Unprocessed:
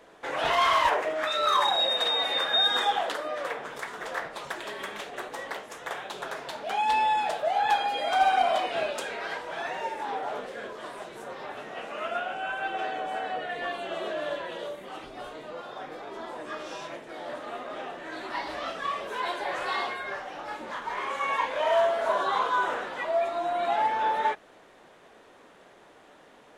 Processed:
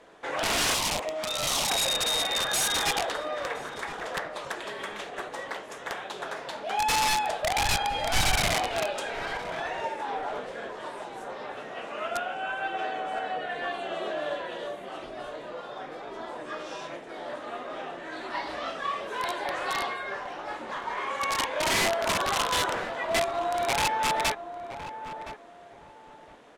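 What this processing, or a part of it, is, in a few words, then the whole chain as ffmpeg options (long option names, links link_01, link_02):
overflowing digital effects unit: -filter_complex "[0:a]aeval=exprs='(mod(10*val(0)+1,2)-1)/10':channel_layout=same,lowpass=11000,asettb=1/sr,asplit=3[link_01][link_02][link_03];[link_01]atrim=end=0.744[link_04];[link_02]atrim=start=0.74:end=1.7,asetpts=PTS-STARTPTS,afade=type=in:duration=0.004:curve=qsin,afade=type=out:start_time=0.956:duration=0.004:curve=qsin,equalizer=frequency=100:width_type=o:width=0.67:gain=-5,equalizer=frequency=400:width_type=o:width=0.67:gain=-7,equalizer=frequency=1600:width_type=o:width=0.67:gain=-12[link_05];[link_03]atrim=start=1.696[link_06];[link_04][link_05]acrossfade=duration=0.004:curve1=hsin:curve2=qsin[link_07];[link_07][link_06]acrossfade=duration=0.004:curve1=qsin:curve2=hsin,asplit=2[link_08][link_09];[link_09]adelay=1017,lowpass=frequency=1100:poles=1,volume=-9dB,asplit=2[link_10][link_11];[link_11]adelay=1017,lowpass=frequency=1100:poles=1,volume=0.27,asplit=2[link_12][link_13];[link_13]adelay=1017,lowpass=frequency=1100:poles=1,volume=0.27[link_14];[link_08][link_10][link_12][link_14]amix=inputs=4:normalize=0,asettb=1/sr,asplit=3[link_15][link_16][link_17];[link_15]atrim=end=7.014[link_18];[link_16]atrim=start=7.01:end=8.55,asetpts=PTS-STARTPTS,afade=type=in:duration=0.004:curve=qsin,afade=type=out:start_time=1.536:duration=0.004:curve=qsin,asubboost=boost=8:cutoff=170[link_19];[link_17]atrim=start=8.546[link_20];[link_18][link_19]acrossfade=duration=0.004:curve1=hsin:curve2=qsin[link_21];[link_21][link_20]acrossfade=duration=0.004:curve1=qsin:curve2=hsin"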